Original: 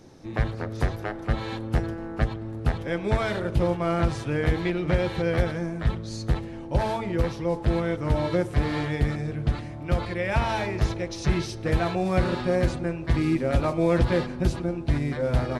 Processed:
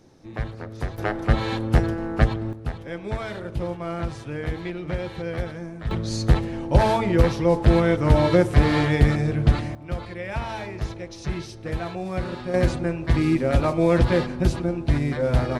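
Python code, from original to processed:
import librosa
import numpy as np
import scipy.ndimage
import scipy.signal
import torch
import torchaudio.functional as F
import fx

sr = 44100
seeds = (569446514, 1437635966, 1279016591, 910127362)

y = fx.gain(x, sr, db=fx.steps((0.0, -4.0), (0.98, 6.0), (2.53, -5.0), (5.91, 7.0), (9.75, -5.0), (12.54, 3.0)))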